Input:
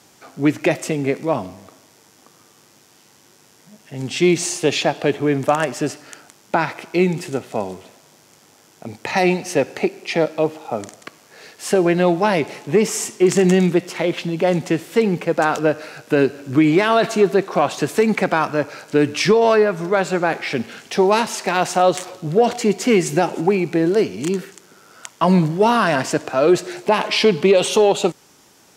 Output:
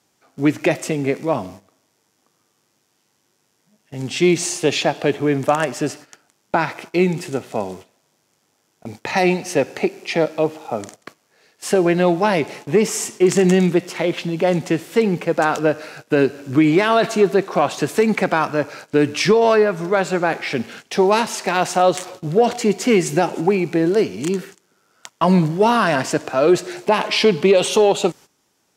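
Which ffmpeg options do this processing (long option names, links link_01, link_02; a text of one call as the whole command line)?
ffmpeg -i in.wav -af "agate=range=-14dB:threshold=-37dB:ratio=16:detection=peak" out.wav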